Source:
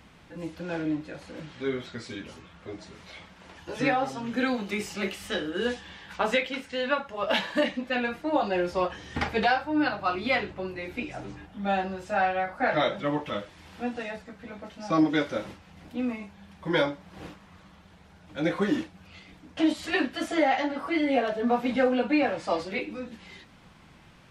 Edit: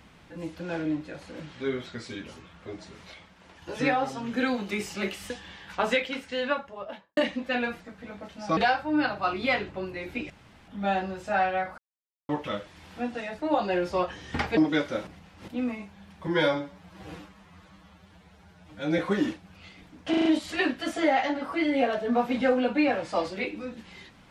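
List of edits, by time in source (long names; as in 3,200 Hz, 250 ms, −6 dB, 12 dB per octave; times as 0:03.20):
0:03.14–0:03.62: clip gain −4 dB
0:05.30–0:05.71: remove
0:06.79–0:07.58: fade out and dull
0:08.21–0:09.39: swap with 0:14.21–0:14.98
0:11.12–0:11.50: fill with room tone
0:12.60–0:13.11: silence
0:15.48–0:15.89: reverse
0:16.68–0:18.49: time-stretch 1.5×
0:19.60: stutter 0.04 s, 5 plays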